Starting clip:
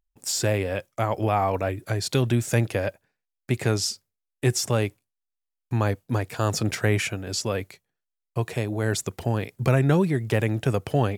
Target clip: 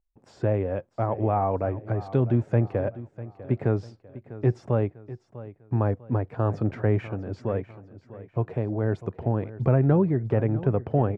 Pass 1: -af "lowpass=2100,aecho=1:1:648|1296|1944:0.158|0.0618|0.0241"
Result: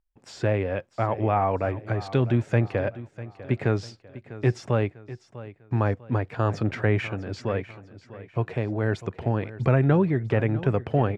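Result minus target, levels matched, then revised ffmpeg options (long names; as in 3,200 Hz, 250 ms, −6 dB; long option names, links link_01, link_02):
2,000 Hz band +8.5 dB
-af "lowpass=970,aecho=1:1:648|1296|1944:0.158|0.0618|0.0241"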